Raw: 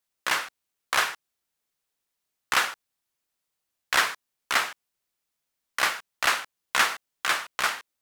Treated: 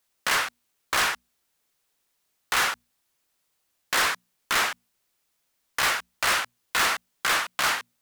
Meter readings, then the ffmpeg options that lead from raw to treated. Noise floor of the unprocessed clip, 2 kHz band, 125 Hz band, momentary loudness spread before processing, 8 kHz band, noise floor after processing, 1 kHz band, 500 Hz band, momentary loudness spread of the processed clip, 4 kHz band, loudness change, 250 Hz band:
-83 dBFS, +1.0 dB, n/a, 10 LU, +3.0 dB, -75 dBFS, +1.0 dB, +2.0 dB, 9 LU, +2.0 dB, +1.0 dB, +3.5 dB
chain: -af "volume=28dB,asoftclip=hard,volume=-28dB,bandreject=f=60:t=h:w=6,bandreject=f=120:t=h:w=6,bandreject=f=180:t=h:w=6,bandreject=f=240:t=h:w=6,volume=8dB"

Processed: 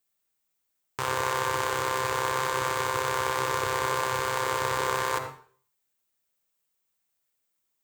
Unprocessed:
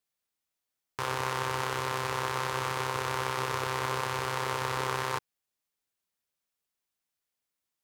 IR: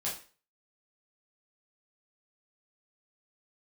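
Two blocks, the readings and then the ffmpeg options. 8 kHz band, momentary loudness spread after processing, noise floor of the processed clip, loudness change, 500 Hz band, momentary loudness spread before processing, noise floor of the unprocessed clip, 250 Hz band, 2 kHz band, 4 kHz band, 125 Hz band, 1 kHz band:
+6.0 dB, 3 LU, -78 dBFS, +4.0 dB, +5.0 dB, 2 LU, under -85 dBFS, +1.5 dB, +4.0 dB, +2.5 dB, -1.5 dB, +4.5 dB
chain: -filter_complex "[0:a]asplit=2[a][b];[b]equalizer=f=6.8k:w=0.36:g=-8.5[c];[1:a]atrim=start_sample=2205,asetrate=35721,aresample=44100,adelay=52[d];[c][d]afir=irnorm=-1:irlink=0,volume=-8.5dB[e];[a][e]amix=inputs=2:normalize=0,aexciter=amount=1.1:drive=7.4:freq=7k,volume=2.5dB"

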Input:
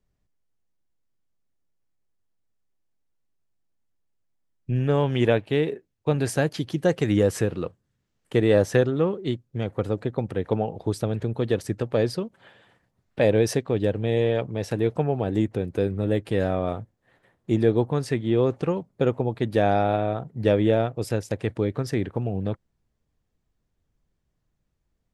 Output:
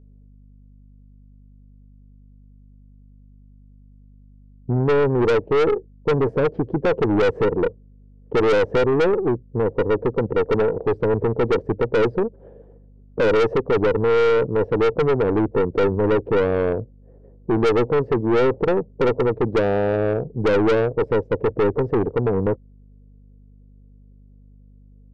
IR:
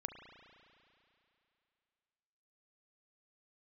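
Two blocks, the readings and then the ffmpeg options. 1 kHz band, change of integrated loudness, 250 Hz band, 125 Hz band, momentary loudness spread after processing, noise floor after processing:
+5.5 dB, +4.5 dB, +2.0 dB, -0.5 dB, 6 LU, -48 dBFS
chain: -filter_complex "[0:a]asplit=2[a][b];[b]alimiter=limit=-16dB:level=0:latency=1:release=105,volume=0dB[c];[a][c]amix=inputs=2:normalize=0,lowpass=f=460:t=q:w=4.9,aeval=exprs='(tanh(5.62*val(0)+0.3)-tanh(0.3))/5.62':c=same,aeval=exprs='val(0)+0.00447*(sin(2*PI*50*n/s)+sin(2*PI*2*50*n/s)/2+sin(2*PI*3*50*n/s)/3+sin(2*PI*4*50*n/s)/4+sin(2*PI*5*50*n/s)/5)':c=same"

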